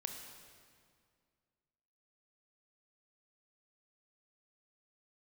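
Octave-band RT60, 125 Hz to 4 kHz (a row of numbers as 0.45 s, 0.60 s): 2.4 s, 2.4 s, 2.2 s, 2.0 s, 1.8 s, 1.7 s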